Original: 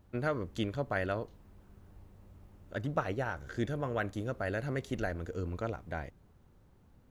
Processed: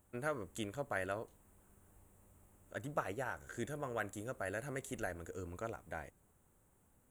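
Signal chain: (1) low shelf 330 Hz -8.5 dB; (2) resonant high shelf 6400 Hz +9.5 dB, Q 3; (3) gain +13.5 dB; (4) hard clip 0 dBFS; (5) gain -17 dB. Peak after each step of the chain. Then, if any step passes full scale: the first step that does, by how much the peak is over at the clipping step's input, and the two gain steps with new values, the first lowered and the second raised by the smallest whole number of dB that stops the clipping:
-18.0, -18.5, -5.0, -5.0, -22.0 dBFS; no overload

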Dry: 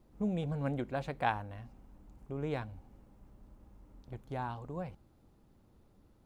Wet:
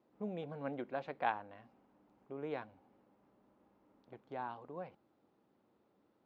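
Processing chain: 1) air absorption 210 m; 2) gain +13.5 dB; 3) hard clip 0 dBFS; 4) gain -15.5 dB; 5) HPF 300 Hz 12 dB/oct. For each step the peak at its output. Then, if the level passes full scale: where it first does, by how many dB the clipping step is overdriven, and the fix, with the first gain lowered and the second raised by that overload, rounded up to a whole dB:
-17.5, -4.0, -4.0, -19.5, -19.0 dBFS; no overload

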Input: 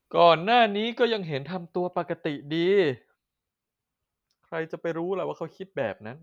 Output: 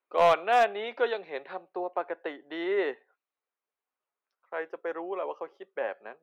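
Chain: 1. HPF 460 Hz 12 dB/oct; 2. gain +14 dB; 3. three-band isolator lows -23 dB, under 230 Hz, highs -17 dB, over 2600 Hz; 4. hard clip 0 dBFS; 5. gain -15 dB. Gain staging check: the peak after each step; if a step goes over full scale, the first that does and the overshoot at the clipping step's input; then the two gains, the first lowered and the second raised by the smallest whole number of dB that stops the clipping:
-7.0, +7.0, +6.5, 0.0, -15.0 dBFS; step 2, 6.5 dB; step 2 +7 dB, step 5 -8 dB

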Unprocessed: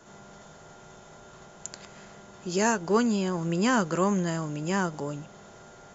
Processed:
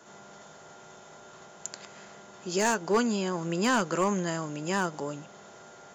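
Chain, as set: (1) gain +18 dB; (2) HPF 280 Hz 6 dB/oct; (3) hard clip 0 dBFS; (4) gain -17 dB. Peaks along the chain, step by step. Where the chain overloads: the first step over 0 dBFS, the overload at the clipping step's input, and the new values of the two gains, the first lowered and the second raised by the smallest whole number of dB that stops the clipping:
+7.5, +8.0, 0.0, -17.0 dBFS; step 1, 8.0 dB; step 1 +10 dB, step 4 -9 dB

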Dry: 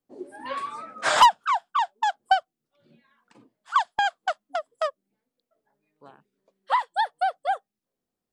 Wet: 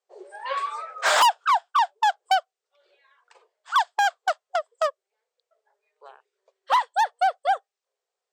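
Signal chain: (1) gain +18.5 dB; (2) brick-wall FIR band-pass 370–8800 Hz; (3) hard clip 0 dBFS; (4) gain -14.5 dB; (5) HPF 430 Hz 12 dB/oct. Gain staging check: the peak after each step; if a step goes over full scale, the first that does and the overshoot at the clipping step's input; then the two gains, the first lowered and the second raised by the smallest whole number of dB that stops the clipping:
+9.0, +10.0, 0.0, -14.5, -8.5 dBFS; step 1, 10.0 dB; step 1 +8.5 dB, step 4 -4.5 dB

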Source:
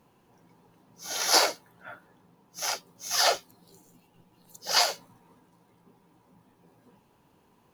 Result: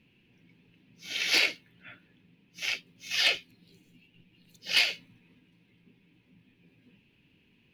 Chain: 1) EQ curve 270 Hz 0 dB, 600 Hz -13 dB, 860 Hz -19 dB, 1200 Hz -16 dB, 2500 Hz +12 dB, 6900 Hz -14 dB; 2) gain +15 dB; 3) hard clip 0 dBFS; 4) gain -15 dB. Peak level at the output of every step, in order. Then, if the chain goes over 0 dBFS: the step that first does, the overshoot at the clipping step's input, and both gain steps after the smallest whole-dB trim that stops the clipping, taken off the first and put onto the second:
-8.5, +6.5, 0.0, -15.0 dBFS; step 2, 6.5 dB; step 2 +8 dB, step 4 -8 dB

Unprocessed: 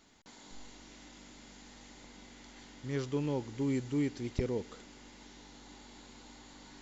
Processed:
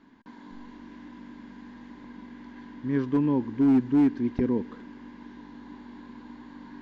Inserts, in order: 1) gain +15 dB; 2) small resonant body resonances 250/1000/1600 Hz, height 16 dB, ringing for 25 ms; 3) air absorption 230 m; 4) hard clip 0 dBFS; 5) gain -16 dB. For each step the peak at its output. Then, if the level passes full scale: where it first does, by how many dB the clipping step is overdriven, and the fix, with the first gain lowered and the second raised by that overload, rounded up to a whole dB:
-1.0, +5.5, +5.5, 0.0, -16.0 dBFS; step 2, 5.5 dB; step 1 +9 dB, step 5 -10 dB

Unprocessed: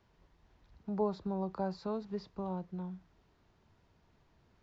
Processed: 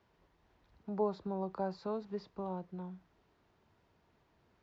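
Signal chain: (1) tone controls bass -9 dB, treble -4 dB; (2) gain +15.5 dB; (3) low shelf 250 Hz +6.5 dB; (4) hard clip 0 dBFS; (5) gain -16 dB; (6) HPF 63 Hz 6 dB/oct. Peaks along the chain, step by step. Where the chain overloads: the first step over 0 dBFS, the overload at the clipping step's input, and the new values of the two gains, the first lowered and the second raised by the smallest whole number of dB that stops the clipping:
-23.0, -7.5, -5.5, -5.5, -21.5, -22.0 dBFS; no overload

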